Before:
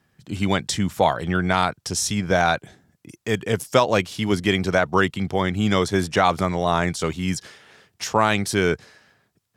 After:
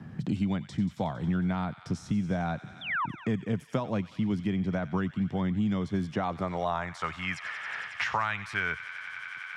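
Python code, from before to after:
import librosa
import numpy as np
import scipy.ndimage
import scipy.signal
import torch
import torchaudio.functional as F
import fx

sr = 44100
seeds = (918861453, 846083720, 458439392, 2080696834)

y = fx.peak_eq(x, sr, hz=400.0, db=-11.0, octaves=1.5)
y = fx.spec_paint(y, sr, seeds[0], shape='fall', start_s=2.81, length_s=0.25, low_hz=870.0, high_hz=3700.0, level_db=-23.0)
y = fx.filter_sweep_bandpass(y, sr, from_hz=220.0, to_hz=1700.0, start_s=6.05, end_s=7.25, q=1.1)
y = fx.echo_wet_highpass(y, sr, ms=91, feedback_pct=72, hz=1700.0, wet_db=-13.0)
y = fx.band_squash(y, sr, depth_pct=100)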